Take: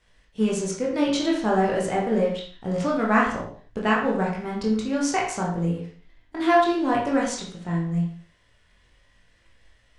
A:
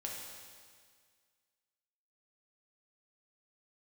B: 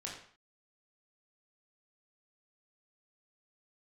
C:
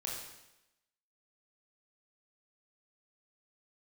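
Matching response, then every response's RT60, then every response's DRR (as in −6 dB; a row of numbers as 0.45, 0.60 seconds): B; 1.9, 0.50, 0.90 seconds; −2.5, −3.5, −3.5 decibels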